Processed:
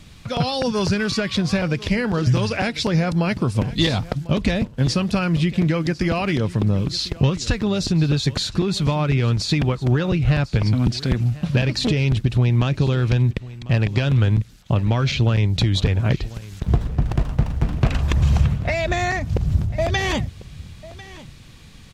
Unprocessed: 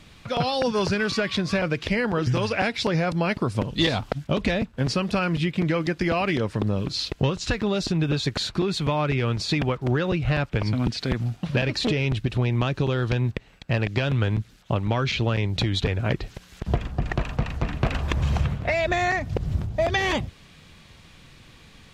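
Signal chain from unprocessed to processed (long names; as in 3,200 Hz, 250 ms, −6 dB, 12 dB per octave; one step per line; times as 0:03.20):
bass and treble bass +7 dB, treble +6 dB
on a send: single-tap delay 1,047 ms −18.5 dB
0:16.63–0:17.81: on the sum: windowed peak hold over 17 samples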